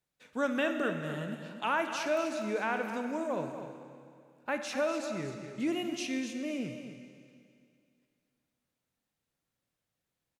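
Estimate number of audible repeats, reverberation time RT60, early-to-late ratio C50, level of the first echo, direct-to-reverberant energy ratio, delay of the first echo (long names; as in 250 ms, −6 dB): 1, 2.4 s, 5.5 dB, −10.5 dB, 5.0 dB, 247 ms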